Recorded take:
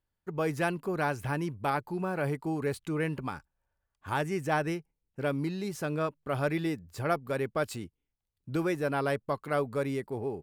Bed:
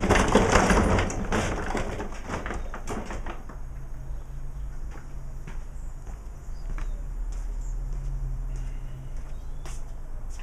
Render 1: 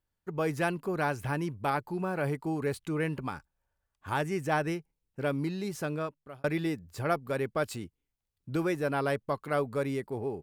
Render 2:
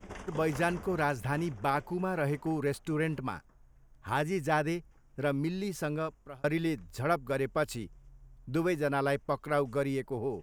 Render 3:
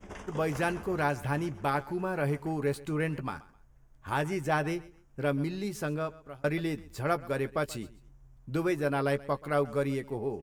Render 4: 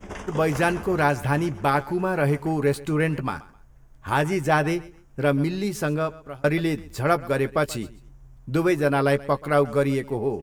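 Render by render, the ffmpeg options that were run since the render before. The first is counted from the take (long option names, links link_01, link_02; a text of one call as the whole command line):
ffmpeg -i in.wav -filter_complex "[0:a]asplit=2[link_01][link_02];[link_01]atrim=end=6.44,asetpts=PTS-STARTPTS,afade=type=out:start_time=5.83:duration=0.61[link_03];[link_02]atrim=start=6.44,asetpts=PTS-STARTPTS,afade=type=in:duration=0.004:curve=hsin[link_04];[link_03][link_04]concat=n=2:v=0:a=1" out.wav
ffmpeg -i in.wav -i bed.wav -filter_complex "[1:a]volume=-24dB[link_01];[0:a][link_01]amix=inputs=2:normalize=0" out.wav
ffmpeg -i in.wav -filter_complex "[0:a]asplit=2[link_01][link_02];[link_02]adelay=14,volume=-11dB[link_03];[link_01][link_03]amix=inputs=2:normalize=0,aecho=1:1:130|260:0.1|0.027" out.wav
ffmpeg -i in.wav -af "volume=8dB" out.wav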